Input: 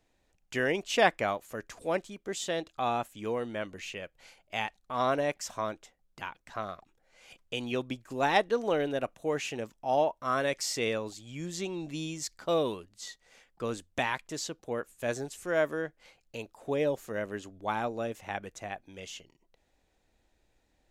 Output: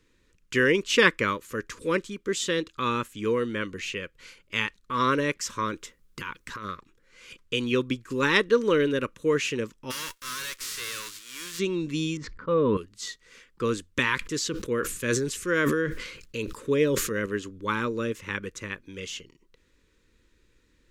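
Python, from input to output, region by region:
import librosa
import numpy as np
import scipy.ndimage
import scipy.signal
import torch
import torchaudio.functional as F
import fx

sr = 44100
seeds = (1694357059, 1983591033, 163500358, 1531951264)

y = fx.chain(x, sr, fx.high_shelf(hz=9900.0, db=8.0),
    fx.over_compress(threshold_db=-41.0, ratio=-1.0), at=(5.73, 6.66))
y = fx.envelope_flatten(y, sr, power=0.3, at=(9.9, 11.58), fade=0.02)
y = fx.highpass(y, sr, hz=1100.0, slope=6, at=(9.9, 11.58), fade=0.02)
y = fx.tube_stage(y, sr, drive_db=38.0, bias=0.45, at=(9.9, 11.58), fade=0.02)
y = fx.chain(y, sr, fx.lowpass(hz=1200.0, slope=12),
    fx.peak_eq(hz=360.0, db=-12.5, octaves=0.22),
    fx.sustainer(db_per_s=24.0), at=(12.17, 12.77))
y = fx.chain(y, sr, fx.peak_eq(hz=850.0, db=-4.0, octaves=0.69),
    fx.sustainer(db_per_s=59.0), at=(14.15, 17.26))
y = scipy.signal.sosfilt(scipy.signal.cheby1(2, 1.0, [470.0, 1100.0], 'bandstop', fs=sr, output='sos'), y)
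y = fx.high_shelf(y, sr, hz=12000.0, db=-7.5)
y = F.gain(torch.from_numpy(y), 8.5).numpy()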